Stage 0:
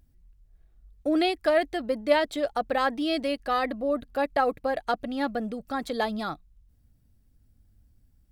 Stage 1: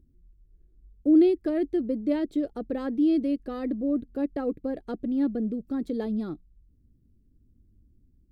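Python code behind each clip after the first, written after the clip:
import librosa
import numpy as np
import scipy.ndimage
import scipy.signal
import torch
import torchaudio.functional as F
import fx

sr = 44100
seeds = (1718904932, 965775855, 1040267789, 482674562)

y = fx.curve_eq(x, sr, hz=(120.0, 360.0, 720.0), db=(0, 8, -16))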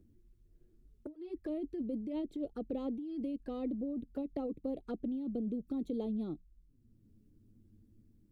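y = fx.over_compress(x, sr, threshold_db=-28.0, ratio=-1.0)
y = fx.env_flanger(y, sr, rest_ms=11.2, full_db=-27.0)
y = fx.band_squash(y, sr, depth_pct=40)
y = F.gain(torch.from_numpy(y), -8.5).numpy()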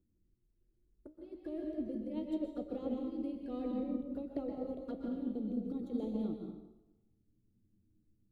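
y = fx.comb_fb(x, sr, f0_hz=62.0, decay_s=0.47, harmonics='all', damping=0.0, mix_pct=50)
y = fx.rev_plate(y, sr, seeds[0], rt60_s=1.3, hf_ratio=0.75, predelay_ms=110, drr_db=0.0)
y = fx.upward_expand(y, sr, threshold_db=-58.0, expansion=1.5)
y = F.gain(torch.from_numpy(y), 2.5).numpy()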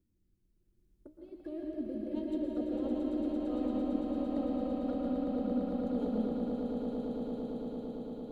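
y = fx.tracing_dist(x, sr, depth_ms=0.029)
y = fx.echo_swell(y, sr, ms=113, loudest=8, wet_db=-6.0)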